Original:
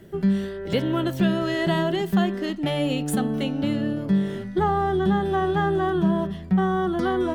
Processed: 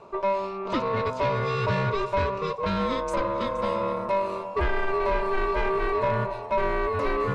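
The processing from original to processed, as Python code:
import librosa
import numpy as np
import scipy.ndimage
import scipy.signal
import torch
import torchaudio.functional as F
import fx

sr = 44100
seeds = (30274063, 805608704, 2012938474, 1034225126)

y = x * np.sin(2.0 * np.pi * 780.0 * np.arange(len(x)) / sr)
y = fx.low_shelf(y, sr, hz=340.0, db=9.0)
y = 10.0 ** (-18.5 / 20.0) * np.tanh(y / 10.0 ** (-18.5 / 20.0))
y = fx.lowpass(y, sr, hz=fx.steps((0.0, 6900.0), (3.47, 11000.0)), slope=24)
y = y + 10.0 ** (-15.0 / 20.0) * np.pad(y, (int(471 * sr / 1000.0), 0))[:len(y)]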